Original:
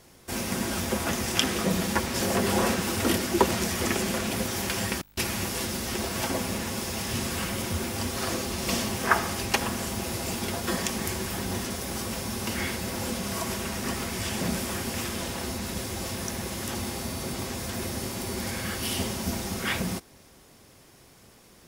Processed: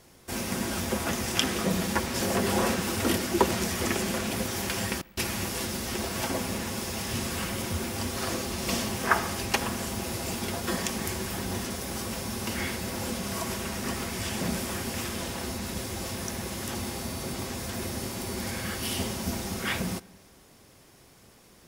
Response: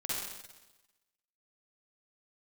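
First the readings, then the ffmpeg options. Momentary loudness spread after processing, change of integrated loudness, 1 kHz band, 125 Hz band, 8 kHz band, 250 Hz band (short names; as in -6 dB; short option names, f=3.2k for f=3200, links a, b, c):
7 LU, -1.5 dB, -1.0 dB, -1.0 dB, -1.5 dB, -1.0 dB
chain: -filter_complex "[0:a]asplit=2[a][b];[1:a]atrim=start_sample=2205,lowpass=3.1k[c];[b][c]afir=irnorm=-1:irlink=0,volume=-24.5dB[d];[a][d]amix=inputs=2:normalize=0,volume=-1.5dB"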